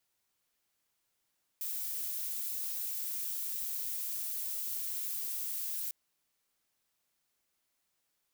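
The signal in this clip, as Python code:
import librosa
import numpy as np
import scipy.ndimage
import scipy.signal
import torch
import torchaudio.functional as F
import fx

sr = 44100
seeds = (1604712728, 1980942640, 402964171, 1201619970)

y = fx.noise_colour(sr, seeds[0], length_s=4.3, colour='violet', level_db=-37.0)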